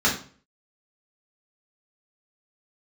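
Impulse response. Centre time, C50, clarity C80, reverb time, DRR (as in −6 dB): 25 ms, 7.5 dB, 13.0 dB, 0.45 s, −5.0 dB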